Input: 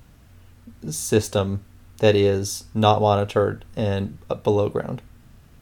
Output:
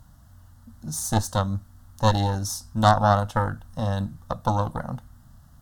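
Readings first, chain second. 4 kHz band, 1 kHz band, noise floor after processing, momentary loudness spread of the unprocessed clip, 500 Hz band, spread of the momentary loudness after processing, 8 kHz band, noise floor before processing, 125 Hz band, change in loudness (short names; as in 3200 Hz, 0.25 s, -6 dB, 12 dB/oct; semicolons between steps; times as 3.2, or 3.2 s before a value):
-3.5 dB, +1.5 dB, -52 dBFS, 13 LU, -8.5 dB, 13 LU, -1.0 dB, -51 dBFS, +0.5 dB, -2.5 dB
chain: added harmonics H 4 -11 dB, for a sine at -1 dBFS; fixed phaser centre 1000 Hz, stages 4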